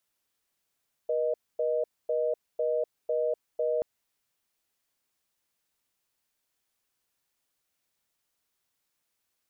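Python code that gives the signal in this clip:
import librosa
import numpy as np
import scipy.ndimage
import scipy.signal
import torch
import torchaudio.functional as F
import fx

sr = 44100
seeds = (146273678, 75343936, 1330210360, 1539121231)

y = fx.call_progress(sr, length_s=2.73, kind='reorder tone', level_db=-27.5)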